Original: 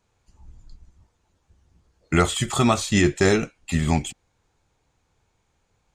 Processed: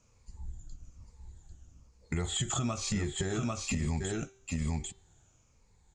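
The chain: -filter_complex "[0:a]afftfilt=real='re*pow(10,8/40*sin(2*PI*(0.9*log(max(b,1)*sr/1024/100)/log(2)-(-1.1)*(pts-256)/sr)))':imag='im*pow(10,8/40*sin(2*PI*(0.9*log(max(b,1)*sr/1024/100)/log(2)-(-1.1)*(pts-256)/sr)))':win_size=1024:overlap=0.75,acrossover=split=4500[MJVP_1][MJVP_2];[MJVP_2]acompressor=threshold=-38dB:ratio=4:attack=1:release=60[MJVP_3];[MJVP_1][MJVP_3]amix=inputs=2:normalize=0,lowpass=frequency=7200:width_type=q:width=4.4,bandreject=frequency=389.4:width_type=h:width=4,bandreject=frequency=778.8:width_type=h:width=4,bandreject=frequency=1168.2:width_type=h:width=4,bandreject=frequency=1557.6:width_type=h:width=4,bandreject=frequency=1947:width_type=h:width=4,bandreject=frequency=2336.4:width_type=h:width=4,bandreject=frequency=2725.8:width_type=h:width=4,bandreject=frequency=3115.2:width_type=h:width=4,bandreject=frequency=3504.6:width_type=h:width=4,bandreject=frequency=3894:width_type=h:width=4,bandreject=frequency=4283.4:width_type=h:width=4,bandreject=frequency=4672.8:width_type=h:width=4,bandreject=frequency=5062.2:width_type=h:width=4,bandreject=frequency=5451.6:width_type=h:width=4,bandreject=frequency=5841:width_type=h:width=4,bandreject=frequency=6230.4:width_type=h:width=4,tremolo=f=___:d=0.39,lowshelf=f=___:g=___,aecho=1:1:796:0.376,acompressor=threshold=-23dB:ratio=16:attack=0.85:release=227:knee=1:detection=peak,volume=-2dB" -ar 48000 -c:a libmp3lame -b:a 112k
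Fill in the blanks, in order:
0.77, 220, 9.5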